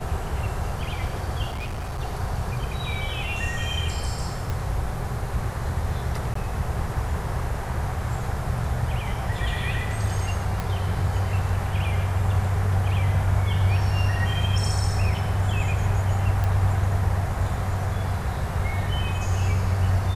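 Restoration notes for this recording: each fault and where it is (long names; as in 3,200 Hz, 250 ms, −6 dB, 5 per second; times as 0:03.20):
0:01.49–0:02.01: clipping −27 dBFS
0:04.50: click −16 dBFS
0:06.34–0:06.35: drop-out 14 ms
0:10.60: click −14 dBFS
0:16.44: click −14 dBFS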